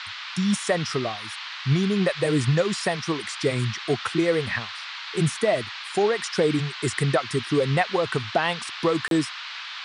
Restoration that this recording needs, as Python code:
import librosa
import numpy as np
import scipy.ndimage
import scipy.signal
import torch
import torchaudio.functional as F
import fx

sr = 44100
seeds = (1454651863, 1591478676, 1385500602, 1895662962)

y = fx.fix_interpolate(x, sr, at_s=(9.08,), length_ms=32.0)
y = fx.noise_reduce(y, sr, print_start_s=9.29, print_end_s=9.79, reduce_db=30.0)